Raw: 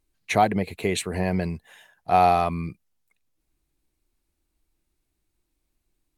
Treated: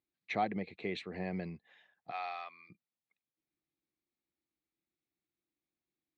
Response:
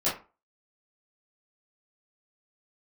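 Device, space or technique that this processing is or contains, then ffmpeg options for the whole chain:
kitchen radio: -filter_complex "[0:a]asplit=3[s0][s1][s2];[s0]afade=t=out:st=2.1:d=0.02[s3];[s1]highpass=1300,afade=t=in:st=2.1:d=0.02,afade=t=out:st=2.69:d=0.02[s4];[s2]afade=t=in:st=2.69:d=0.02[s5];[s3][s4][s5]amix=inputs=3:normalize=0,highpass=200,equalizer=f=260:t=q:w=4:g=-3,equalizer=f=420:t=q:w=4:g=-5,equalizer=f=630:t=q:w=4:g=-6,equalizer=f=970:t=q:w=4:g=-9,equalizer=f=1500:t=q:w=4:g=-7,equalizer=f=2900:t=q:w=4:g=-7,lowpass=f=3800:w=0.5412,lowpass=f=3800:w=1.3066,volume=0.376"

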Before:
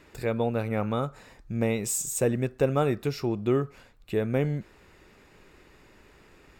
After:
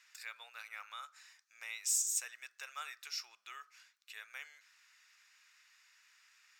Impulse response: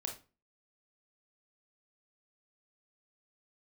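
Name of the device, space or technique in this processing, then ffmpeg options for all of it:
headphones lying on a table: -af "highpass=f=1400:w=0.5412,highpass=f=1400:w=1.3066,equalizer=f=5800:t=o:w=0.59:g=10,volume=0.473"

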